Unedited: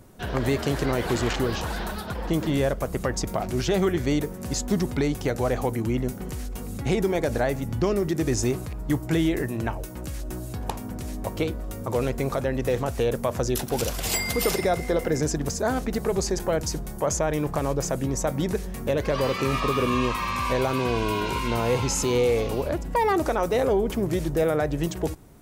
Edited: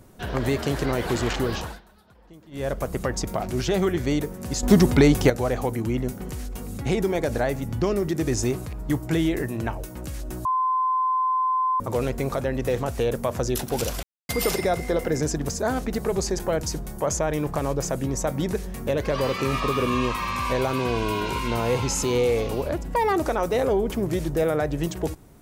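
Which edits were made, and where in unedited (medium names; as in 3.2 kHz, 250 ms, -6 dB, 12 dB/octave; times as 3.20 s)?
1.57–2.75 s: dip -23.5 dB, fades 0.24 s
4.63–5.30 s: gain +8.5 dB
10.45–11.80 s: bleep 1.03 kHz -19.5 dBFS
14.03–14.29 s: mute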